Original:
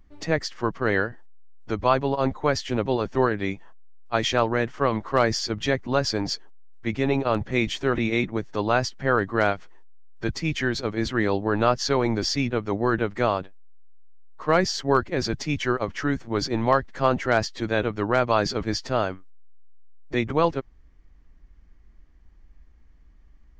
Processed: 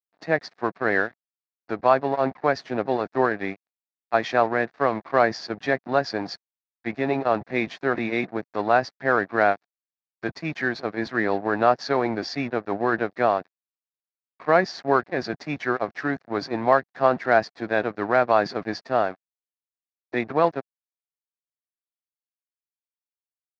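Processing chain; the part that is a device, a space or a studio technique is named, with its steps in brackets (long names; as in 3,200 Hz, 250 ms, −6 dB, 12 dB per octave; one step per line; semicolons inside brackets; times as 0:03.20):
blown loudspeaker (dead-zone distortion −37.5 dBFS; loudspeaker in its box 180–4,600 Hz, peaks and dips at 710 Hz +8 dB, 1,700 Hz +5 dB, 3,100 Hz −10 dB)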